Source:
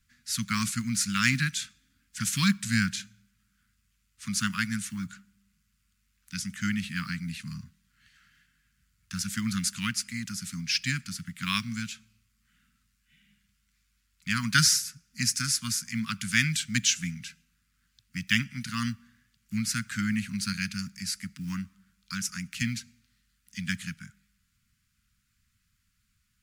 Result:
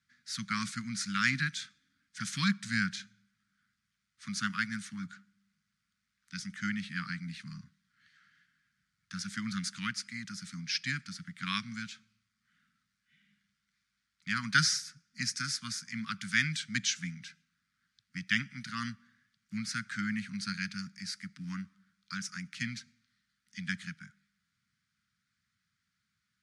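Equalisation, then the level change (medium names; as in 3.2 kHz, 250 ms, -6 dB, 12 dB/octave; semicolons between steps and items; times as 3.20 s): cabinet simulation 200–9100 Hz, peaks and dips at 240 Hz -6 dB, 360 Hz -7 dB, 560 Hz -7 dB, 980 Hz -6 dB, 2.7 kHz -8 dB, 7.4 kHz -6 dB; treble shelf 5.4 kHz -10.5 dB; 0.0 dB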